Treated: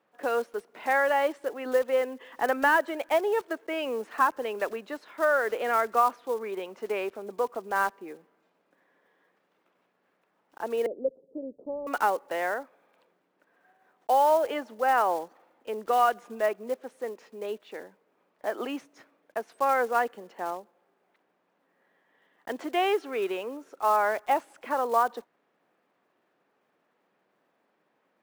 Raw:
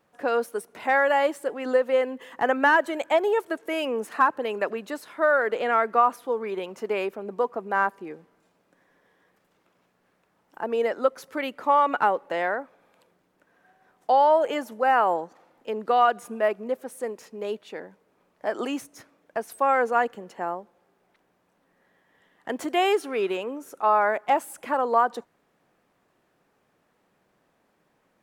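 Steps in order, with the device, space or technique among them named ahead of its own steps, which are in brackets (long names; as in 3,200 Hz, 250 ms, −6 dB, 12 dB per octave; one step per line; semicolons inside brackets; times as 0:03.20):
early digital voice recorder (band-pass filter 240–3,900 Hz; one scale factor per block 5 bits)
0:10.86–0:11.87: Butterworth low-pass 540 Hz 36 dB per octave
level −3 dB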